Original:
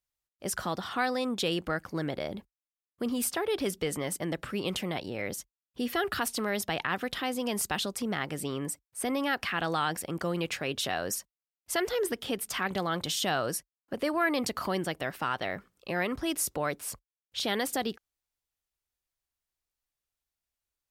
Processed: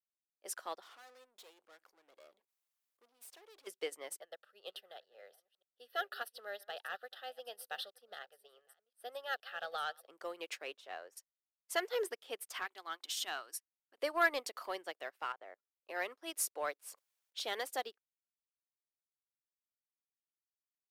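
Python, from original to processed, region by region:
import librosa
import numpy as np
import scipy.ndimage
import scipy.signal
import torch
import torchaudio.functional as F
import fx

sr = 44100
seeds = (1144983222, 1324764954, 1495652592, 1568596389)

y = fx.chain(x, sr, fx.tube_stage(drive_db=38.0, bias=0.75),
    fx.high_shelf(hz=12000.0, db=6.0),
    fx.env_flatten(amount_pct=70), at=(0.82, 3.67))
y = fx.chain(y, sr, fx.reverse_delay(ms=472, wet_db=-13),
    fx.fixed_phaser(hz=1500.0, stages=8), at=(4.21, 10.07))
y = fx.chain(y, sr, fx.halfwave_gain(db=-3.0),
    fx.lowpass(hz=2100.0, slope=6),
    fx.peak_eq(hz=240.0, db=-3.5, octaves=0.98), at=(10.77, 11.17))
y = fx.chain(y, sr, fx.brickwall_highpass(low_hz=220.0),
    fx.peak_eq(hz=540.0, db=-13.5, octaves=0.72), at=(12.64, 13.98))
y = fx.chain(y, sr, fx.lowpass(hz=1500.0, slope=12),
    fx.level_steps(step_db=18), at=(15.32, 15.89))
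y = fx.chain(y, sr, fx.highpass(hz=120.0, slope=6),
    fx.sustainer(db_per_s=51.0), at=(16.88, 17.38))
y = scipy.signal.sosfilt(scipy.signal.butter(4, 410.0, 'highpass', fs=sr, output='sos'), y)
y = fx.leveller(y, sr, passes=1)
y = fx.upward_expand(y, sr, threshold_db=-42.0, expansion=2.5)
y = F.gain(torch.from_numpy(y), -2.5).numpy()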